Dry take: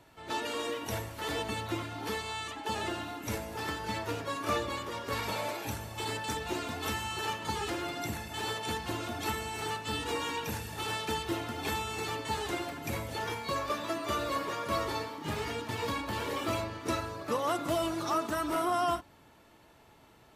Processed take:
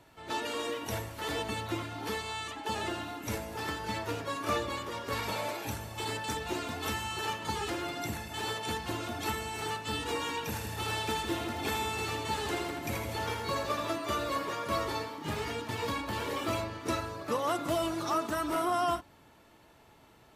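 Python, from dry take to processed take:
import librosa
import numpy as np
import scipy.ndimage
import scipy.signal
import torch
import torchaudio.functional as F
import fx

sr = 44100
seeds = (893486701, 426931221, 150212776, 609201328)

y = fx.echo_split(x, sr, split_hz=530.0, low_ms=155, high_ms=81, feedback_pct=52, wet_db=-6.0, at=(10.47, 13.96))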